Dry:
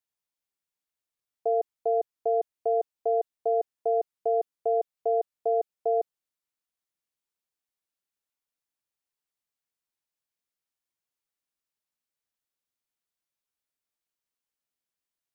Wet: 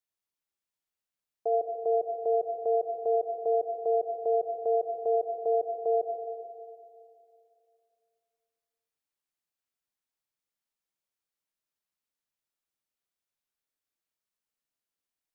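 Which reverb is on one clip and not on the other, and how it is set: algorithmic reverb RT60 2.5 s, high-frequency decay 0.65×, pre-delay 20 ms, DRR 2.5 dB; trim -3 dB

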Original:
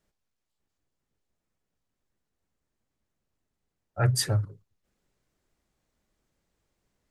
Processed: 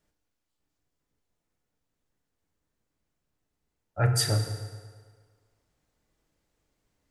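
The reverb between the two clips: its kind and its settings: FDN reverb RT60 1.7 s, low-frequency decay 0.8×, high-frequency decay 0.75×, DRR 4 dB

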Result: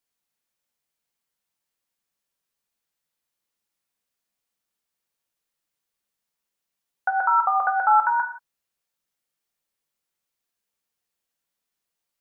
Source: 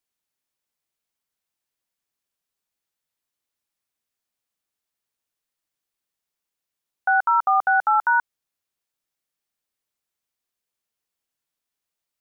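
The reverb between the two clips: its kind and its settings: gated-style reverb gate 200 ms falling, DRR 3.5 dB

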